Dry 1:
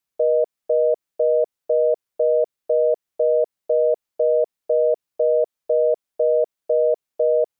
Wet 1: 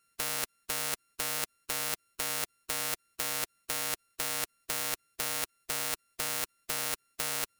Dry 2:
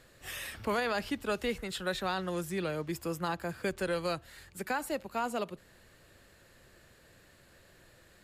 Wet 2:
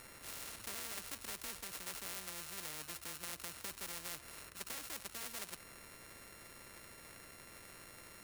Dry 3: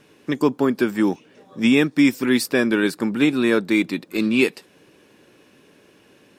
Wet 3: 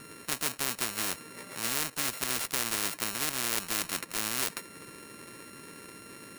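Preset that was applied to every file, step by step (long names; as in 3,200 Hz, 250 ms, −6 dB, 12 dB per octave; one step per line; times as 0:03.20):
samples sorted by size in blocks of 32 samples
thirty-one-band graphic EQ 800 Hz −10 dB, 2,000 Hz +9 dB, 3,150 Hz −3 dB, 10,000 Hz +11 dB
every bin compressed towards the loudest bin 4 to 1
level −7.5 dB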